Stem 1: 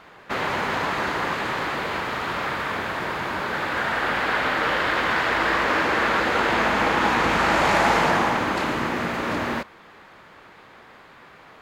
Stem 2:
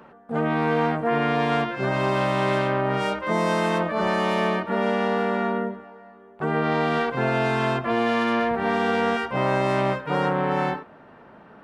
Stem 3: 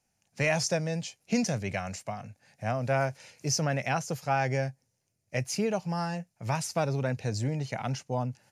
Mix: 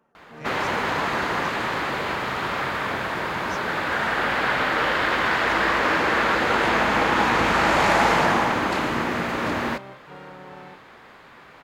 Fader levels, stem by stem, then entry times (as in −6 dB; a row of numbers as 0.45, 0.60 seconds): +0.5, −19.0, −16.5 decibels; 0.15, 0.00, 0.00 seconds